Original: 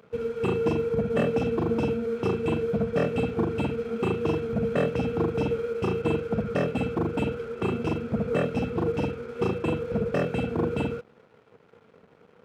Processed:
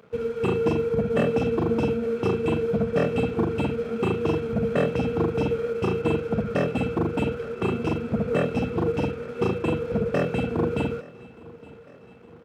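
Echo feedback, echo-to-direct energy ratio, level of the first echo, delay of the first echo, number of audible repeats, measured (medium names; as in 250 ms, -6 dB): 57%, -20.0 dB, -21.5 dB, 864 ms, 3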